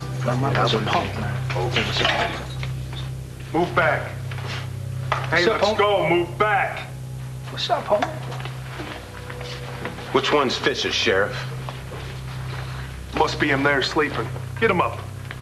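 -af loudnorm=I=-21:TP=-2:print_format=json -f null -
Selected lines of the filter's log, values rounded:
"input_i" : "-22.6",
"input_tp" : "-4.4",
"input_lra" : "2.6",
"input_thresh" : "-33.0",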